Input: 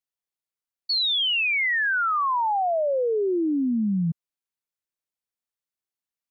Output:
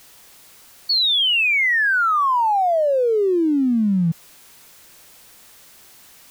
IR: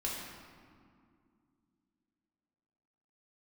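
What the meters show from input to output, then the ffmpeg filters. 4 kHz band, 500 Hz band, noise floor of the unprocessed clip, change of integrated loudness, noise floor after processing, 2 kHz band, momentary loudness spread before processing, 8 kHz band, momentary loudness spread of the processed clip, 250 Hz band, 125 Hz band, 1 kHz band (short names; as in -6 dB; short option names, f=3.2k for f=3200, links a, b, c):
+5.5 dB, +5.5 dB, under -85 dBFS, +5.5 dB, -48 dBFS, +5.5 dB, 6 LU, n/a, 6 LU, +5.5 dB, +5.5 dB, +5.5 dB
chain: -af "aeval=exprs='val(0)+0.5*0.00631*sgn(val(0))':c=same,volume=5dB"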